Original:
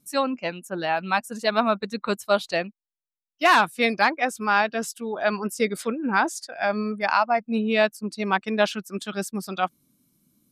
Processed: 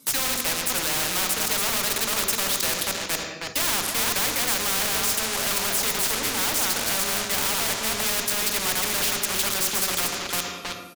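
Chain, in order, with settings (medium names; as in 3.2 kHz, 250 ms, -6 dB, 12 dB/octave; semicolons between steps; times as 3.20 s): chunks repeated in reverse 233 ms, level -9 dB; high-pass 420 Hz 12 dB/octave; in parallel at -4 dB: fuzz box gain 42 dB, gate -38 dBFS; on the sum: speed mistake 25 fps video run at 24 fps; saturation -19.5 dBFS, distortion -11 dB; speakerphone echo 320 ms, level -7 dB; on a send at -6.5 dB: reverberation RT60 0.70 s, pre-delay 3 ms; on the sum: spectrum-flattening compressor 4:1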